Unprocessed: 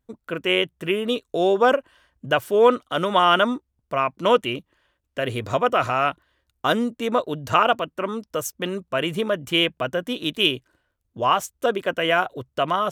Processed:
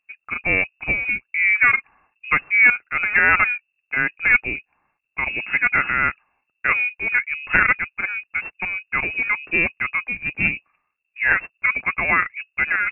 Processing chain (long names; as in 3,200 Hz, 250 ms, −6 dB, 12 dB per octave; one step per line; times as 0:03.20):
stylus tracing distortion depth 0.15 ms
voice inversion scrambler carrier 2,700 Hz
one half of a high-frequency compander decoder only
level +1 dB